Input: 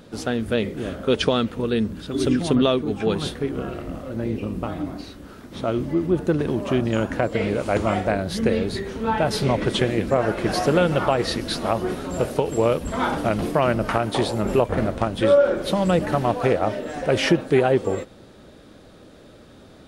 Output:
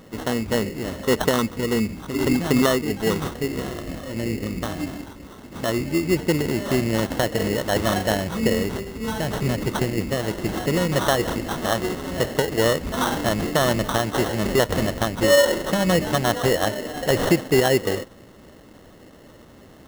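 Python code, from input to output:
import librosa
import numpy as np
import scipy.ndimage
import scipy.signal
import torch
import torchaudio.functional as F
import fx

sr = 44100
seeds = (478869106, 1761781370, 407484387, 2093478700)

y = fx.peak_eq(x, sr, hz=880.0, db=-9.5, octaves=1.7, at=(8.8, 10.92))
y = fx.sample_hold(y, sr, seeds[0], rate_hz=2400.0, jitter_pct=0)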